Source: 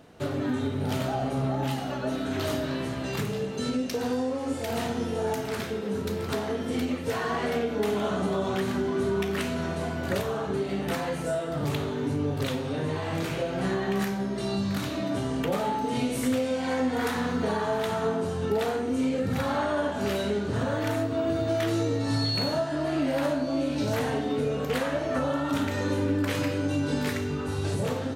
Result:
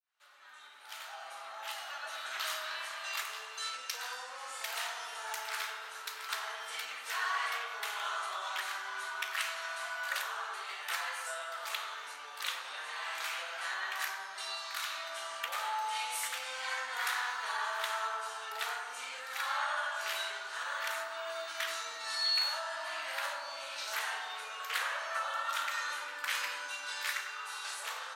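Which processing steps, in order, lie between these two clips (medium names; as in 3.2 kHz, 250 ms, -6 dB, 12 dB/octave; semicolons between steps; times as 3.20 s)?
fade-in on the opening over 2.28 s; high-pass 1.1 kHz 24 dB/octave; on a send: bucket-brigade echo 100 ms, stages 1024, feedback 67%, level -5 dB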